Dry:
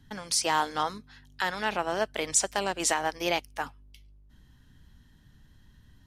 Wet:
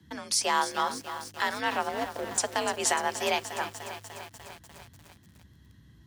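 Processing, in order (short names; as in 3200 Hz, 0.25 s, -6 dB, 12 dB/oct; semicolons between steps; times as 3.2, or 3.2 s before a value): 1.89–2.38 median filter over 41 samples; frequency shift +53 Hz; lo-fi delay 0.297 s, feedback 80%, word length 7-bit, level -11 dB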